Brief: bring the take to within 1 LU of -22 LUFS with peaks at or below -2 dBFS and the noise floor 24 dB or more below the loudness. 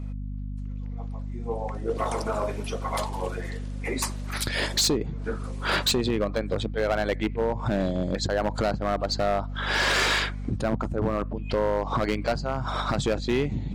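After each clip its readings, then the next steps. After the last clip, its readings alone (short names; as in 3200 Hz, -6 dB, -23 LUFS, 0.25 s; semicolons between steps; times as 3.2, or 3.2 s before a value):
clipped 1.5%; flat tops at -18.0 dBFS; hum 50 Hz; harmonics up to 250 Hz; hum level -31 dBFS; loudness -27.5 LUFS; peak -18.0 dBFS; loudness target -22.0 LUFS
-> clip repair -18 dBFS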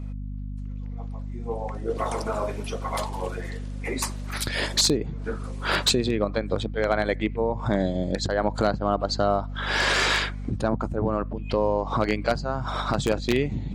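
clipped 0.0%; hum 50 Hz; harmonics up to 250 Hz; hum level -30 dBFS
-> notches 50/100/150/200/250 Hz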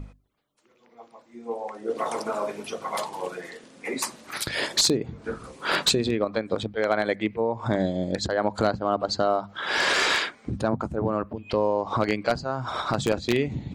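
hum none; loudness -26.5 LUFS; peak -8.0 dBFS; loudness target -22.0 LUFS
-> gain +4.5 dB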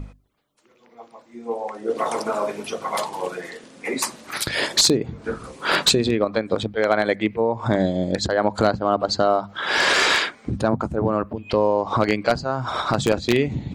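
loudness -22.0 LUFS; peak -3.5 dBFS; noise floor -56 dBFS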